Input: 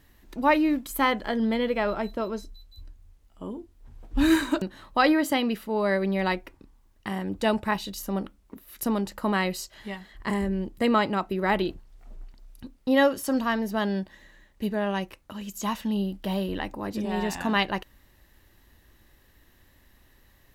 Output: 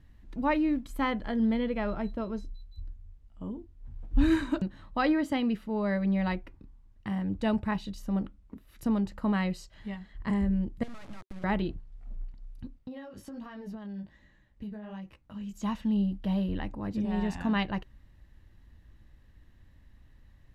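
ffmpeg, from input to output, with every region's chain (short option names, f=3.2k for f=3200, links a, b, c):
-filter_complex "[0:a]asettb=1/sr,asplit=3[a][b][c];[a]atrim=end=10.834[d];[b]atrim=start=10.83:end=11.44,asetpts=PTS-STARTPTS,afade=t=in:d=0.004:c=qsin,afade=t=out:st=0.606:d=0.004:c=qsin,acompressor=threshold=-34dB:ratio=8:attack=3.2:release=140:knee=1:detection=peak,acrusher=bits=4:dc=4:mix=0:aa=0.000001[e];[c]atrim=start=11.436[f];[d][e]acrossfade=d=0.004:c1=hsin:c2=qsin[g];[g][f]acrossfade=d=0.004:c1=qsin:c2=hsin,asettb=1/sr,asplit=3[h][i][j];[h]atrim=end=12.784[k];[i]atrim=start=12.78:end=15.53,asetpts=PTS-STARTPTS,afade=t=in:d=0.004:c=qsin,afade=t=out:st=2.746:d=0.004:c=qsin,flanger=delay=15:depth=5.1:speed=1.3,acompressor=threshold=-34dB:ratio=16:attack=3.2:release=140:knee=1:detection=peak[l];[j]atrim=start=15.526[m];[k][l]acrossfade=d=0.004:c1=hsin:c2=qsin[n];[n][m]acrossfade=d=0.004:c1=qsin:c2=hsin,lowpass=9.5k,bass=f=250:g=12,treble=f=4k:g=-6,bandreject=f=380:w=12,volume=-7.5dB"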